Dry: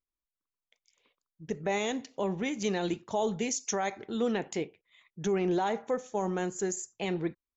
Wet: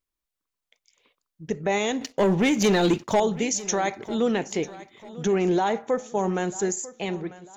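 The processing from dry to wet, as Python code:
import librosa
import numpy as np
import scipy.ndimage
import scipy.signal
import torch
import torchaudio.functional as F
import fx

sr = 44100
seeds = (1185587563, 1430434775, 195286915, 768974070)

y = fx.fade_out_tail(x, sr, length_s=0.7)
y = fx.leveller(y, sr, passes=2, at=(2.01, 3.2))
y = fx.echo_feedback(y, sr, ms=945, feedback_pct=40, wet_db=-18.0)
y = y * librosa.db_to_amplitude(6.0)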